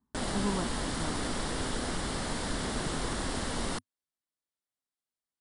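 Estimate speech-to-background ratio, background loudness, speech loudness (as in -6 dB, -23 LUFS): -4.0 dB, -34.0 LUFS, -38.0 LUFS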